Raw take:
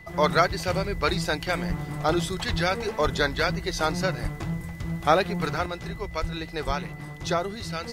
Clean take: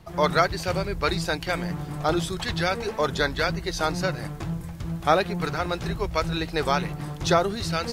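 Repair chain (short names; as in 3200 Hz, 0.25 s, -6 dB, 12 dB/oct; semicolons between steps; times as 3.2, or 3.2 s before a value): notch 2000 Hz, Q 30; de-plosive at 1.68/2.5/3.03/4.22/6.2/6.66; gain 0 dB, from 5.66 s +5.5 dB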